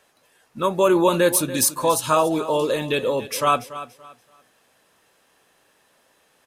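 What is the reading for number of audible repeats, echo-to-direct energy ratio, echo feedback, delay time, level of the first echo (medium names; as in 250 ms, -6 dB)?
2, -14.0 dB, 26%, 286 ms, -14.5 dB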